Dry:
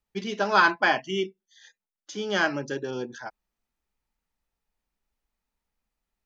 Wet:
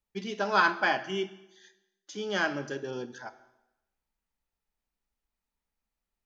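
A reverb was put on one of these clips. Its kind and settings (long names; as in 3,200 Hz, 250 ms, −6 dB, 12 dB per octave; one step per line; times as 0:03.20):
dense smooth reverb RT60 0.95 s, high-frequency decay 0.9×, DRR 11.5 dB
level −4.5 dB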